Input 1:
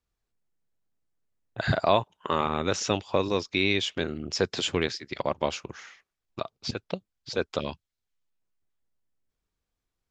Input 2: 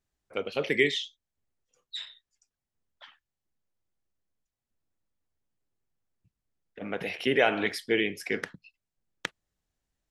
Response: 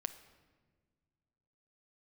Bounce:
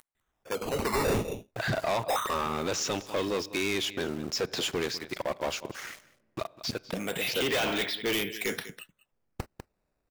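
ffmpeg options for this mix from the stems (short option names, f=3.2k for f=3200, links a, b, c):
-filter_complex "[0:a]highpass=f=160:p=1,acompressor=mode=upward:threshold=-33dB:ratio=2.5,aeval=exprs='val(0)*gte(abs(val(0)),0.00631)':c=same,volume=-5.5dB,asplit=3[a][b][c];[b]volume=-11.5dB[d];[c]volume=-19.5dB[e];[1:a]lowpass=f=3.6k:t=q:w=7.2,acrusher=samples=8:mix=1:aa=0.000001:lfo=1:lforange=12.8:lforate=0.23,adelay=150,volume=-5dB,asplit=2[f][g];[g]volume=-19.5dB[h];[2:a]atrim=start_sample=2205[i];[d][i]afir=irnorm=-1:irlink=0[j];[e][h]amix=inputs=2:normalize=0,aecho=0:1:198:1[k];[a][f][j][k]amix=inputs=4:normalize=0,acontrast=84,asoftclip=type=tanh:threshold=-24dB,equalizer=f=3.5k:w=1.5:g=-2"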